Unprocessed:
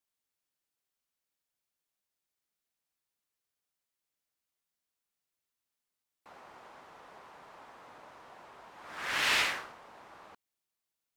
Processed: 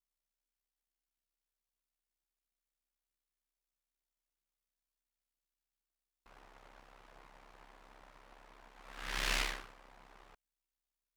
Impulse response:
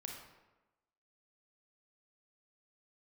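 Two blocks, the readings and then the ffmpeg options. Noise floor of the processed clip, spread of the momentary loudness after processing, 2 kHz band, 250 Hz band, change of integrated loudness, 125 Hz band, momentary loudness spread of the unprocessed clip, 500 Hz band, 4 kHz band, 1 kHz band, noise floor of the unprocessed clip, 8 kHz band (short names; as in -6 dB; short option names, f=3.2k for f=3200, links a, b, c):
under -85 dBFS, 20 LU, -8.5 dB, -3.0 dB, -7.5 dB, +4.5 dB, 20 LU, -5.5 dB, -7.0 dB, -7.5 dB, under -85 dBFS, -4.5 dB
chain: -af "aeval=exprs='max(val(0),0)':c=same,aeval=exprs='val(0)*sin(2*PI*33*n/s)':c=same"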